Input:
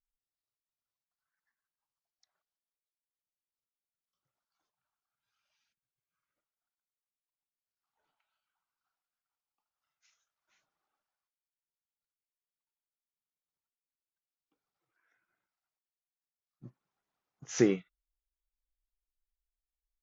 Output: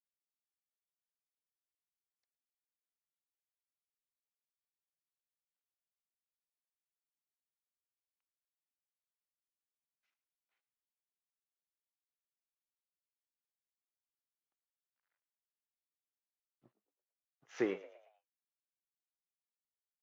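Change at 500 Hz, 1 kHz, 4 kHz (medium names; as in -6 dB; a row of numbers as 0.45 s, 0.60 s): -7.0 dB, -2.5 dB, -11.5 dB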